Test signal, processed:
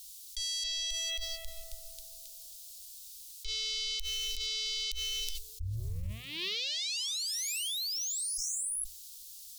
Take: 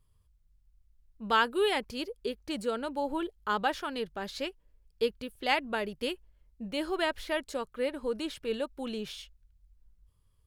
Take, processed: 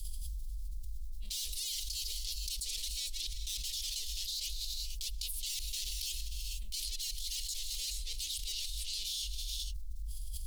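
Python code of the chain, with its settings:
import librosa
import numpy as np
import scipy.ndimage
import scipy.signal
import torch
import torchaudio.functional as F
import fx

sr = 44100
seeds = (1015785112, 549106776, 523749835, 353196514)

y = fx.tube_stage(x, sr, drive_db=42.0, bias=0.25)
y = scipy.signal.sosfilt(scipy.signal.cheby2(4, 50, [130.0, 1600.0], 'bandstop', fs=sr, output='sos'), y)
y = fx.hum_notches(y, sr, base_hz=60, count=2)
y = fx.rev_gated(y, sr, seeds[0], gate_ms=480, shape='rising', drr_db=12.0)
y = fx.env_flatten(y, sr, amount_pct=100)
y = y * 10.0 ** (8.0 / 20.0)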